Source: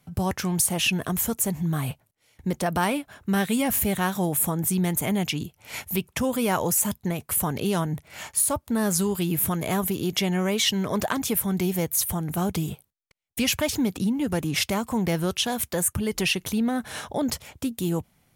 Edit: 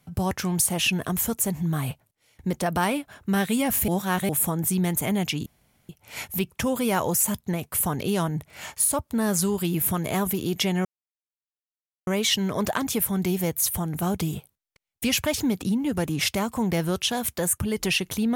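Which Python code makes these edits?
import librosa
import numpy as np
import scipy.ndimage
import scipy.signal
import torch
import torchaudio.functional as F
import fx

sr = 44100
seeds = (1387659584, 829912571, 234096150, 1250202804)

y = fx.edit(x, sr, fx.reverse_span(start_s=3.88, length_s=0.41),
    fx.insert_room_tone(at_s=5.46, length_s=0.43),
    fx.insert_silence(at_s=10.42, length_s=1.22), tone=tone)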